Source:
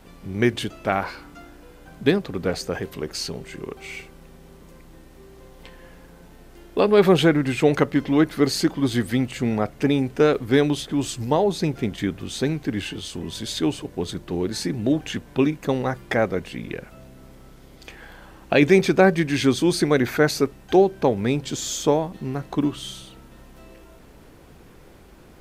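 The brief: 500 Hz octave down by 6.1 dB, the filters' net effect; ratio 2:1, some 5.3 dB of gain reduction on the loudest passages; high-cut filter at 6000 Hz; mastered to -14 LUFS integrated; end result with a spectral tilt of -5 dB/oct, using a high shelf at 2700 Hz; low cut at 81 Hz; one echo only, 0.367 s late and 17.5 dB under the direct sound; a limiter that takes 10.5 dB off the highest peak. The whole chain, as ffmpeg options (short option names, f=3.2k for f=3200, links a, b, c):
-af "highpass=81,lowpass=6k,equalizer=f=500:t=o:g=-8,highshelf=f=2.7k:g=-4,acompressor=threshold=-24dB:ratio=2,alimiter=limit=-18.5dB:level=0:latency=1,aecho=1:1:367:0.133,volume=17dB"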